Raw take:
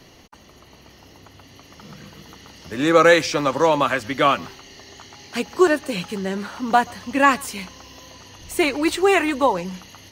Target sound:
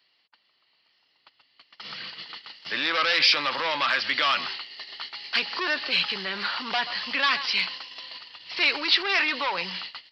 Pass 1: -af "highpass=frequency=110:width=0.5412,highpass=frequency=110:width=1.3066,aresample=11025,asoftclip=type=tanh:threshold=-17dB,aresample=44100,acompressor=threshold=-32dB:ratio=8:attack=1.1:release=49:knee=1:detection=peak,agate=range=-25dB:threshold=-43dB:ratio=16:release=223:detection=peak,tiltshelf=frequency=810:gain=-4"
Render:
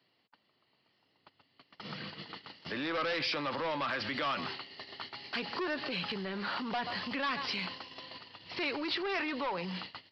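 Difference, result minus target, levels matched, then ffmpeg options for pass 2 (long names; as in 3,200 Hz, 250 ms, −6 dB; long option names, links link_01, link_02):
downward compressor: peak gain reduction +6 dB; 1,000 Hz band +4.0 dB
-af "highpass=frequency=110:width=0.5412,highpass=frequency=110:width=1.3066,aresample=11025,asoftclip=type=tanh:threshold=-17dB,aresample=44100,acompressor=threshold=-25dB:ratio=8:attack=1.1:release=49:knee=1:detection=peak,agate=range=-25dB:threshold=-43dB:ratio=16:release=223:detection=peak,tiltshelf=frequency=810:gain=-14.5"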